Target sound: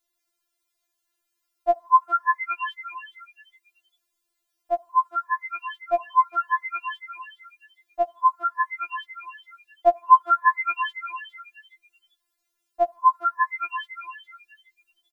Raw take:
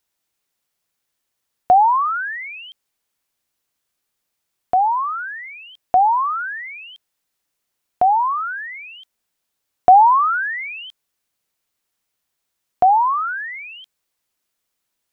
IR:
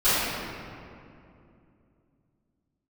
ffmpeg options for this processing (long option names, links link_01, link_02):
-filter_complex "[0:a]asplit=4[link_01][link_02][link_03][link_04];[link_02]adelay=411,afreqshift=93,volume=-9dB[link_05];[link_03]adelay=822,afreqshift=186,volume=-19.5dB[link_06];[link_04]adelay=1233,afreqshift=279,volume=-29.9dB[link_07];[link_01][link_05][link_06][link_07]amix=inputs=4:normalize=0,afftfilt=real='re*4*eq(mod(b,16),0)':imag='im*4*eq(mod(b,16),0)':win_size=2048:overlap=0.75"